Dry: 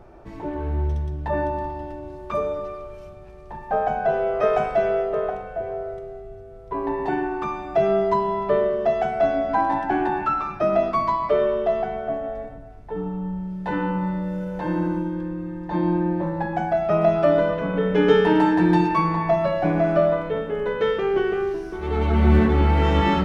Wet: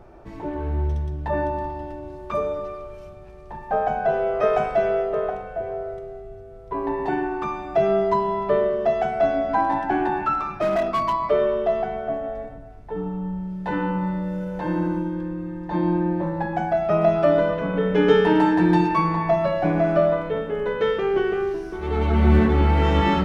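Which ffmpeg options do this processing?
ffmpeg -i in.wav -filter_complex "[0:a]asettb=1/sr,asplit=3[link_01][link_02][link_03];[link_01]atrim=end=10.334[link_04];[link_02]atrim=start=10.33:end=11.13,asetpts=PTS-STARTPTS,afade=type=in:duration=0.004:curve=qsin,afade=type=out:start_time=0.796:duration=0.004:curve=qsin,volume=17.5dB,asoftclip=hard,volume=-17.5dB[link_05];[link_03]atrim=start=11.126[link_06];[link_04][link_05]acrossfade=duration=0.004:curve1=hsin:curve2=qsin[link_07];[link_07][link_06]acrossfade=duration=0.004:curve1=qsin:curve2=hsin" out.wav

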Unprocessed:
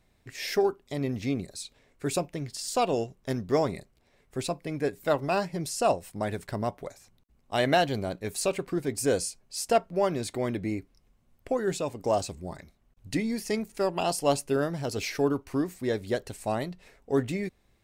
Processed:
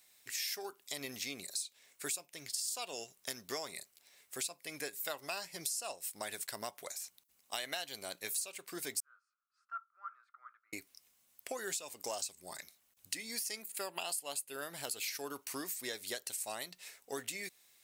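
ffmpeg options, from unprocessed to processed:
ffmpeg -i in.wav -filter_complex "[0:a]asettb=1/sr,asplit=3[link_01][link_02][link_03];[link_01]atrim=end=9.004[link_04];[link_02]atrim=start=9:end=10.73,asetpts=PTS-STARTPTS,afade=type=in:duration=0.004:curve=qsin,afade=type=out:start_time=1.726:duration=0.004:curve=qsin,asuperpass=centerf=1300:order=4:qfactor=6.7[link_05];[link_03]atrim=start=10.726[link_06];[link_04][link_05]acrossfade=duration=0.004:curve1=hsin:curve2=qsin[link_07];[link_07][link_06]acrossfade=duration=0.004:curve1=qsin:curve2=hsin,asettb=1/sr,asplit=3[link_08][link_09][link_10];[link_08]atrim=end=13.624[link_11];[link_09]atrim=start=13.62:end=15.08,asetpts=PTS-STARTPTS,afade=type=in:duration=0.004:curve=qsin,afade=type=out:start_time=1.456:duration=0.004:curve=qsin,equalizer=frequency=5700:width=3.4:gain=-12.5[link_12];[link_10]atrim=start=15.076[link_13];[link_11][link_12]acrossfade=duration=0.004:curve1=hsin:curve2=qsin[link_14];[link_14][link_13]acrossfade=duration=0.004:curve1=qsin:curve2=hsin,aderivative,acompressor=threshold=-50dB:ratio=6,volume=13dB" out.wav

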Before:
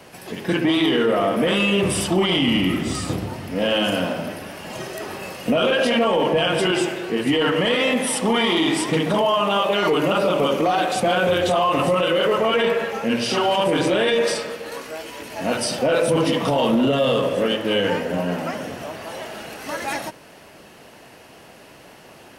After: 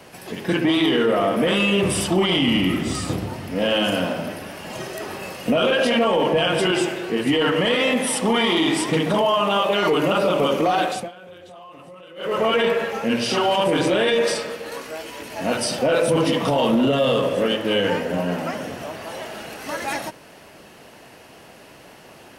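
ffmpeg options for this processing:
ffmpeg -i in.wav -filter_complex "[0:a]asplit=3[link_01][link_02][link_03];[link_01]atrim=end=11.11,asetpts=PTS-STARTPTS,afade=type=out:start_time=10.84:duration=0.27:silence=0.0668344[link_04];[link_02]atrim=start=11.11:end=12.16,asetpts=PTS-STARTPTS,volume=-23.5dB[link_05];[link_03]atrim=start=12.16,asetpts=PTS-STARTPTS,afade=type=in:duration=0.27:silence=0.0668344[link_06];[link_04][link_05][link_06]concat=n=3:v=0:a=1" out.wav

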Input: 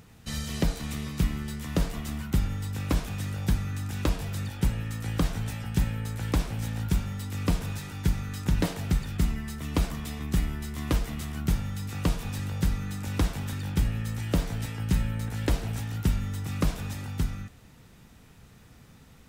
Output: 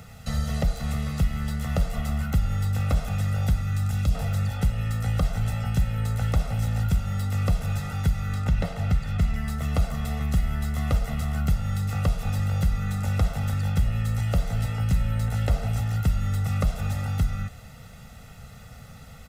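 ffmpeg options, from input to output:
ffmpeg -i in.wav -filter_complex "[0:a]asettb=1/sr,asplit=3[link_01][link_02][link_03];[link_01]atrim=end=3.614[link_04];[link_02]atrim=start=3.61:end=4.15,asetpts=PTS-STARTPTS,afade=type=in:duration=0.004:curve=qsin,afade=type=out:start_time=0.536:duration=0.004:curve=qsin,acrossover=split=250|3000[link_05][link_06][link_07];[link_06]acompressor=threshold=-44dB:ratio=6:attack=3.2:release=140:knee=2.83:detection=peak[link_08];[link_05][link_08][link_07]amix=inputs=3:normalize=0[link_09];[link_03]atrim=start=4.146[link_10];[link_04][link_09]acrossfade=duration=0.004:curve1=hsin:curve2=qsin[link_11];[link_11][link_10]acrossfade=duration=0.004:curve1=qsin:curve2=hsin,asettb=1/sr,asplit=3[link_12][link_13][link_14];[link_12]atrim=end=8.344[link_15];[link_13]atrim=start=8.34:end=9.34,asetpts=PTS-STARTPTS,afade=type=in:duration=0.004:curve=qsin,afade=type=out:start_time=0.996:duration=0.004:curve=qsin,highshelf=frequency=5200:gain=-11.5[link_16];[link_14]atrim=start=9.336[link_17];[link_15][link_16]acrossfade=duration=0.004:curve1=hsin:curve2=qsin[link_18];[link_18][link_17]acrossfade=duration=0.004:curve1=qsin:curve2=hsin,equalizer=frequency=1000:width_type=o:width=1.6:gain=2,aecho=1:1:1.5:0.97,acrossover=split=100|1600[link_19][link_20][link_21];[link_19]acompressor=threshold=-25dB:ratio=4[link_22];[link_20]acompressor=threshold=-33dB:ratio=4[link_23];[link_21]acompressor=threshold=-47dB:ratio=4[link_24];[link_22][link_23][link_24]amix=inputs=3:normalize=0,volume=4.5dB" out.wav

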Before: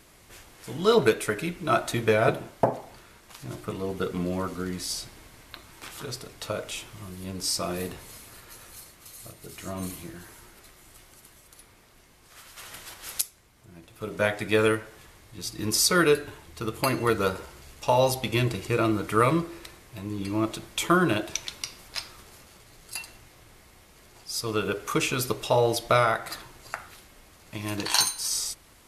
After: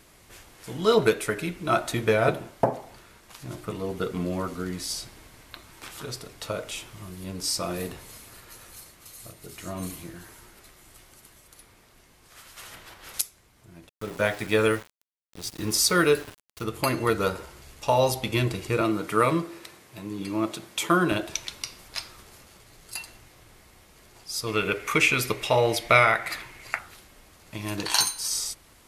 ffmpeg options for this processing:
ffmpeg -i in.wav -filter_complex "[0:a]asettb=1/sr,asplit=3[link_01][link_02][link_03];[link_01]atrim=end=12.744[link_04];[link_02]atrim=start=12.74:end=13.14,asetpts=PTS-STARTPTS,afade=type=in:duration=0.004:curve=qsin,afade=type=out:start_time=0.396:duration=0.004:curve=qsin,equalizer=frequency=9400:width=0.45:gain=-10[link_05];[link_03]atrim=start=13.136[link_06];[link_04][link_05]acrossfade=duration=0.004:curve1=hsin:curve2=qsin[link_07];[link_07][link_06]acrossfade=duration=0.004:curve1=qsin:curve2=hsin,asettb=1/sr,asplit=3[link_08][link_09][link_10];[link_08]atrim=end=13.894[link_11];[link_09]atrim=start=13.89:end=16.64,asetpts=PTS-STARTPTS,afade=type=in:duration=0.004:curve=qsin,afade=type=out:start_time=2.746:duration=0.004:curve=qsin,aeval=exprs='val(0)*gte(abs(val(0)),0.0126)':channel_layout=same[link_12];[link_10]atrim=start=16.636[link_13];[link_11][link_12]acrossfade=duration=0.004:curve1=hsin:curve2=qsin[link_14];[link_14][link_13]acrossfade=duration=0.004:curve1=qsin:curve2=hsin,asettb=1/sr,asplit=3[link_15][link_16][link_17];[link_15]atrim=end=18.814[link_18];[link_16]atrim=start=18.81:end=21.12,asetpts=PTS-STARTPTS,afade=type=in:duration=0.004:curve=qsin,afade=type=out:start_time=2.306:duration=0.004:curve=qsin,highpass=140[link_19];[link_17]atrim=start=21.116[link_20];[link_18][link_19]acrossfade=duration=0.004:curve1=hsin:curve2=qsin[link_21];[link_21][link_20]acrossfade=duration=0.004:curve1=qsin:curve2=hsin,asettb=1/sr,asplit=3[link_22][link_23][link_24];[link_22]atrim=end=24.474[link_25];[link_23]atrim=start=24.47:end=26.79,asetpts=PTS-STARTPTS,afade=type=in:duration=0.004:curve=qsin,afade=type=out:start_time=2.316:duration=0.004:curve=qsin,equalizer=frequency=2200:width_type=o:width=0.64:gain=13.5[link_26];[link_24]atrim=start=26.786[link_27];[link_25][link_26]acrossfade=duration=0.004:curve1=hsin:curve2=qsin[link_28];[link_28][link_27]acrossfade=duration=0.004:curve1=qsin:curve2=hsin" out.wav

